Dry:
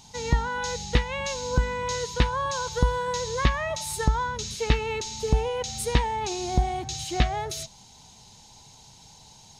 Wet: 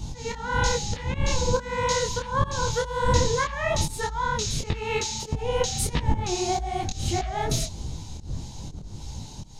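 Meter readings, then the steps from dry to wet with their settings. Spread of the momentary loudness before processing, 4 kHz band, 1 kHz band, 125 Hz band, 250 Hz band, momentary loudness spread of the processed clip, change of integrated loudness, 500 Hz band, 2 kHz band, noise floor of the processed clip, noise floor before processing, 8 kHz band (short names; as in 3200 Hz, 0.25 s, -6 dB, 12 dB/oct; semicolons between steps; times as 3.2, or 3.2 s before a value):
5 LU, +1.5 dB, +1.0 dB, +0.5 dB, +0.5 dB, 12 LU, +0.5 dB, +2.0 dB, +1.0 dB, -40 dBFS, -52 dBFS, +3.5 dB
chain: wind noise 100 Hz -30 dBFS; auto swell 0.247 s; detuned doubles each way 57 cents; gain +8.5 dB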